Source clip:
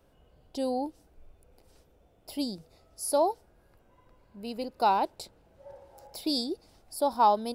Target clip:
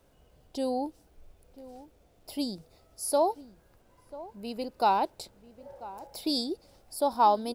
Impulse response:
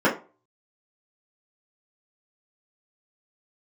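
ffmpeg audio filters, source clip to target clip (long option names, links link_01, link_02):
-filter_complex "[0:a]acrusher=bits=11:mix=0:aa=0.000001,asplit=2[link_01][link_02];[link_02]adelay=991.3,volume=-17dB,highshelf=frequency=4000:gain=-22.3[link_03];[link_01][link_03]amix=inputs=2:normalize=0"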